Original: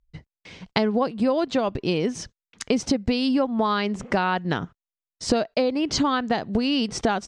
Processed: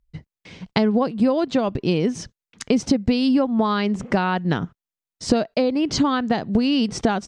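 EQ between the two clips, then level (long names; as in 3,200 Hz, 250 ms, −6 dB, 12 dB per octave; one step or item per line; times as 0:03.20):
parametric band 170 Hz +5.5 dB 2.1 octaves
0.0 dB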